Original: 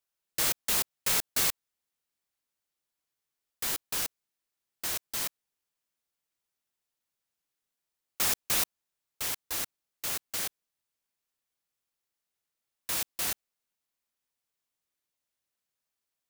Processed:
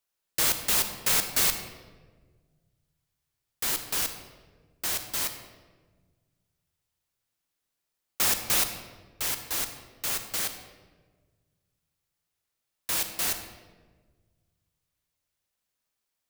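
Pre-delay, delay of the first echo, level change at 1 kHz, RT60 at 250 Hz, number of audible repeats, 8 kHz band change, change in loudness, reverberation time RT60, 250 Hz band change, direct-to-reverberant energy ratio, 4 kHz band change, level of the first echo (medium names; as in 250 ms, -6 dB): 32 ms, no echo, +4.0 dB, 2.1 s, no echo, +3.5 dB, +3.5 dB, 1.5 s, +4.0 dB, 7.5 dB, +3.5 dB, no echo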